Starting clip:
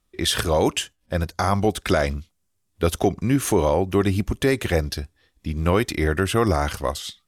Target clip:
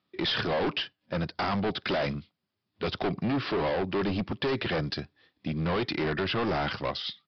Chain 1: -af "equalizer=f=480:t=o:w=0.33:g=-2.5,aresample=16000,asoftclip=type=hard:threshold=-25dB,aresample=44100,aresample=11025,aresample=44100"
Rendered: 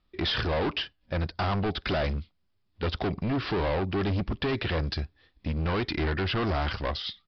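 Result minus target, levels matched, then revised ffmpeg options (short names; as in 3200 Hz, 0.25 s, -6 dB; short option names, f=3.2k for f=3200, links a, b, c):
125 Hz band +4.0 dB
-af "highpass=f=120:w=0.5412,highpass=f=120:w=1.3066,equalizer=f=480:t=o:w=0.33:g=-2.5,aresample=16000,asoftclip=type=hard:threshold=-25dB,aresample=44100,aresample=11025,aresample=44100"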